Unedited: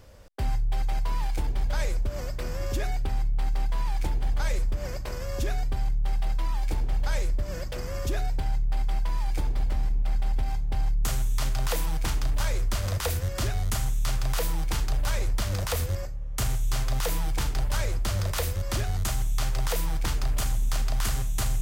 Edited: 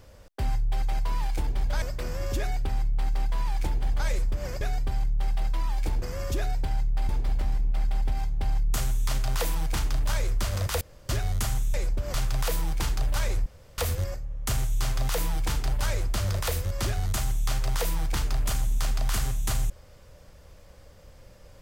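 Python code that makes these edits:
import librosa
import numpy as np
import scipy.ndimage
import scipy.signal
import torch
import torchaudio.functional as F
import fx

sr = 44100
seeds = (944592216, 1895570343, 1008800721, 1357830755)

y = fx.edit(x, sr, fx.move(start_s=1.82, length_s=0.4, to_s=14.05),
    fx.cut(start_s=5.01, length_s=0.45),
    fx.cut(start_s=6.87, length_s=0.9),
    fx.cut(start_s=8.84, length_s=0.56),
    fx.room_tone_fill(start_s=13.12, length_s=0.28),
    fx.room_tone_fill(start_s=15.37, length_s=0.32), tone=tone)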